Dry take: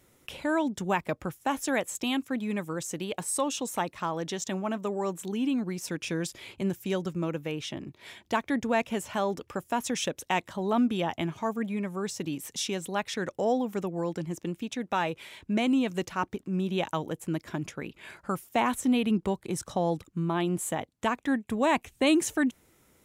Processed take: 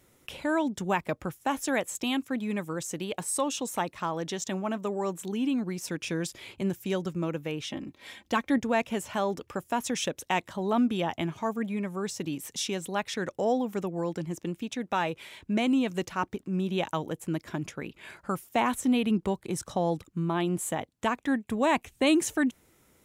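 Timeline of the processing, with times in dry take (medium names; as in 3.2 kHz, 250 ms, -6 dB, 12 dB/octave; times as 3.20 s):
7.69–8.58 s: comb 3.8 ms, depth 54%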